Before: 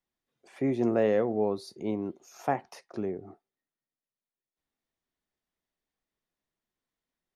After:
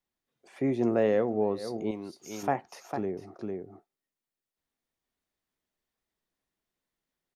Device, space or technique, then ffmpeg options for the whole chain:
ducked delay: -filter_complex "[0:a]asplit=3[link_01][link_02][link_03];[link_02]adelay=452,volume=-3dB[link_04];[link_03]apad=whole_len=344243[link_05];[link_04][link_05]sidechaincompress=threshold=-45dB:ratio=8:attack=5.2:release=139[link_06];[link_01][link_06]amix=inputs=2:normalize=0,asettb=1/sr,asplit=3[link_07][link_08][link_09];[link_07]atrim=end=1.914[link_10];[link_08]atrim=start=1.91:end=2.43,asetpts=PTS-STARTPTS,afade=type=in:duration=0.004:curve=qsin,afade=type=out:start_time=0.516:duration=0.004:curve=qsin,tiltshelf=frequency=1300:gain=-7.5[link_11];[link_09]atrim=start=2.426[link_12];[link_10][link_11]acrossfade=duration=0.004:curve1=hsin:curve2=qsin[link_13];[link_13][link_12]acrossfade=duration=0.004:curve1=qsin:curve2=hsin"

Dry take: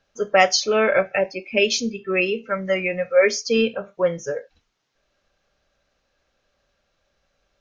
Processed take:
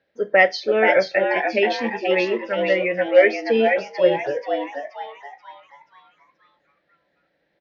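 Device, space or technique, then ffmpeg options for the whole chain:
frequency-shifting delay pedal into a guitar cabinet: -filter_complex "[0:a]lowpass=5500,asplit=7[link_01][link_02][link_03][link_04][link_05][link_06][link_07];[link_02]adelay=481,afreqshift=140,volume=-4dB[link_08];[link_03]adelay=962,afreqshift=280,volume=-11.1dB[link_09];[link_04]adelay=1443,afreqshift=420,volume=-18.3dB[link_10];[link_05]adelay=1924,afreqshift=560,volume=-25.4dB[link_11];[link_06]adelay=2405,afreqshift=700,volume=-32.5dB[link_12];[link_07]adelay=2886,afreqshift=840,volume=-39.7dB[link_13];[link_01][link_08][link_09][link_10][link_11][link_12][link_13]amix=inputs=7:normalize=0,highpass=110,equalizer=frequency=320:width_type=q:width=4:gain=8,equalizer=frequency=510:width_type=q:width=4:gain=7,equalizer=frequency=1200:width_type=q:width=4:gain=-10,equalizer=frequency=1900:width_type=q:width=4:gain=10,equalizer=frequency=2800:width_type=q:width=4:gain=-4,lowpass=frequency=4300:width=0.5412,lowpass=frequency=4300:width=1.3066,volume=-3dB"

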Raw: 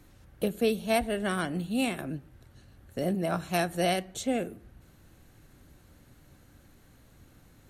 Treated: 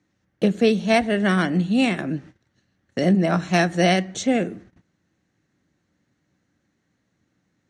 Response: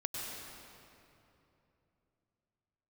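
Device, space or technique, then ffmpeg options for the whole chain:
car door speaker: -filter_complex "[0:a]agate=range=-20dB:threshold=-49dB:ratio=16:detection=peak,highpass=110,equalizer=frequency=190:width_type=q:width=4:gain=7,equalizer=frequency=310:width_type=q:width=4:gain=4,equalizer=frequency=1900:width_type=q:width=4:gain=7,equalizer=frequency=6000:width_type=q:width=4:gain=5,lowpass=frequency=7100:width=0.5412,lowpass=frequency=7100:width=1.3066,asettb=1/sr,asplit=3[link_01][link_02][link_03];[link_01]atrim=end=2.174[link_04];[link_02]atrim=start=2.17:end=3.09,asetpts=PTS-STARTPTS,afade=type=in:duration=0.004:curve=qsin,afade=type=out:start_time=0.916:duration=0.004:curve=qsin,equalizer=frequency=4200:width=0.38:gain=4[link_05];[link_03]atrim=start=3.086[link_06];[link_04][link_05]acrossfade=duration=0.004:curve1=hsin:curve2=qsin[link_07];[link_07][link_06]acrossfade=duration=0.004:curve1=qsin:curve2=hsin,volume=7dB"

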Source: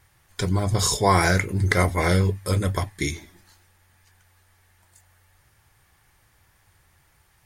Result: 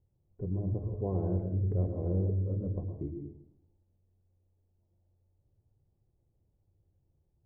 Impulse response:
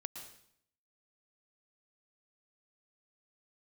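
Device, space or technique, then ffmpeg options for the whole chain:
next room: -filter_complex "[0:a]lowpass=frequency=510:width=0.5412,lowpass=frequency=510:width=1.3066[link_01];[1:a]atrim=start_sample=2205[link_02];[link_01][link_02]afir=irnorm=-1:irlink=0,volume=-6.5dB"

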